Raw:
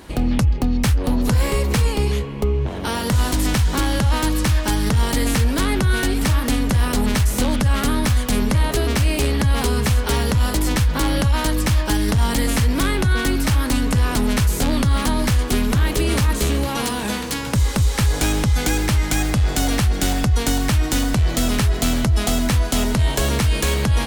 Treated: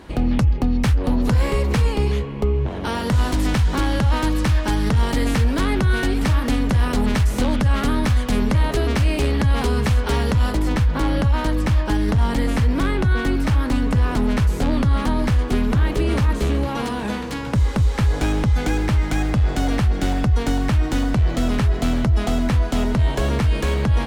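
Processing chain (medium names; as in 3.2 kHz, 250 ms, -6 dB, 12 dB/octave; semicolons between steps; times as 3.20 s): low-pass 3 kHz 6 dB/octave, from 10.52 s 1.7 kHz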